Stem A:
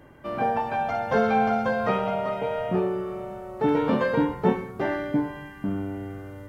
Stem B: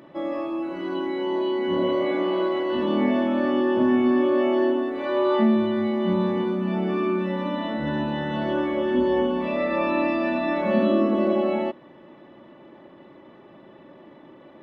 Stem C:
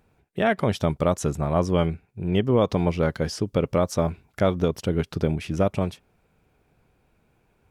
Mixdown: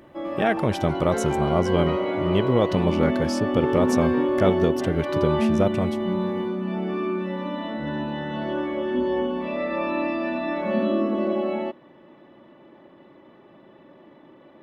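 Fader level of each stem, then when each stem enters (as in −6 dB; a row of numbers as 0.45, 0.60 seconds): −7.5, −2.5, −0.5 decibels; 0.00, 0.00, 0.00 seconds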